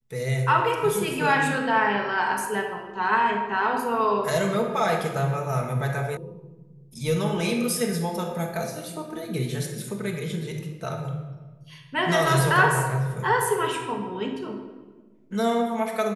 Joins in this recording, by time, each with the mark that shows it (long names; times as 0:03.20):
0:06.17: cut off before it has died away